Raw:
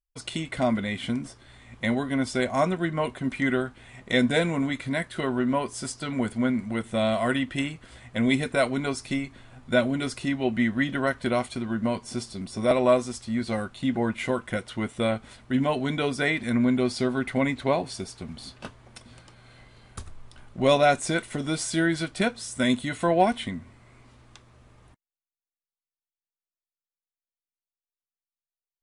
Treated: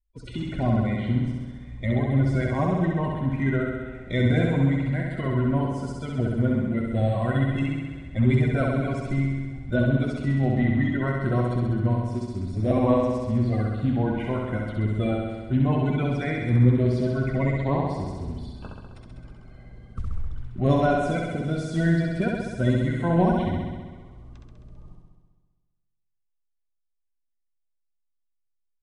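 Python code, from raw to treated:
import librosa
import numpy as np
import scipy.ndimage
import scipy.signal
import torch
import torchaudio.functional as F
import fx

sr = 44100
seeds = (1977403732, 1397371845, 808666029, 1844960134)

y = fx.spec_quant(x, sr, step_db=30)
y = fx.riaa(y, sr, side='playback')
y = fx.room_flutter(y, sr, wall_m=11.3, rt60_s=1.4)
y = y * librosa.db_to_amplitude(-6.0)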